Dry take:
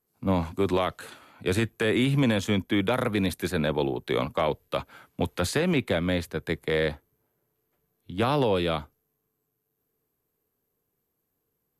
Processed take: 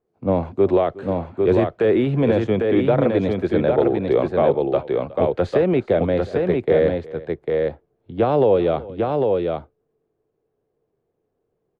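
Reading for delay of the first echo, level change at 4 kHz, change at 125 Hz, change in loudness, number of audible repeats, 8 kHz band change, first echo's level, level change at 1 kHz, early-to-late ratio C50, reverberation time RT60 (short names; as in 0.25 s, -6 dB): 0.365 s, -6.5 dB, +4.5 dB, +7.0 dB, 2, under -15 dB, -19.5 dB, +5.5 dB, none, none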